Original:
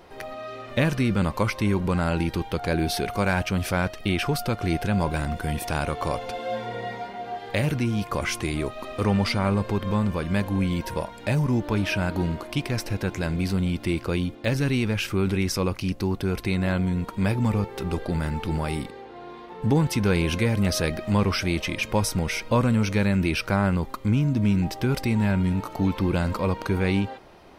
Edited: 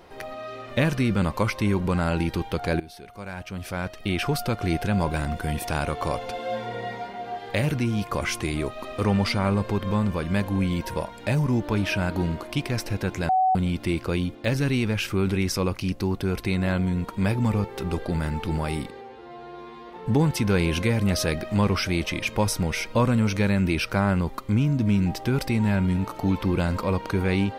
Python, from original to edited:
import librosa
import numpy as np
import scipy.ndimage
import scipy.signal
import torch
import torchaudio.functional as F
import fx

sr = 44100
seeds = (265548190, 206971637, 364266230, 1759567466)

y = fx.edit(x, sr, fx.fade_in_from(start_s=2.8, length_s=1.47, curve='qua', floor_db=-18.0),
    fx.bleep(start_s=13.29, length_s=0.26, hz=751.0, db=-17.0),
    fx.stretch_span(start_s=19.01, length_s=0.44, factor=2.0), tone=tone)